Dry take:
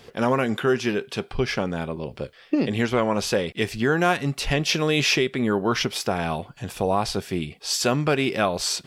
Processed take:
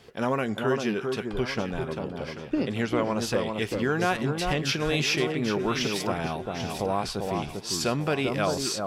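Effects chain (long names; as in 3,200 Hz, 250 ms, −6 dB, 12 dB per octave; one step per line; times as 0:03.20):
tape wow and flutter 43 cents
delay that swaps between a low-pass and a high-pass 395 ms, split 1,300 Hz, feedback 59%, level −4 dB
level −5 dB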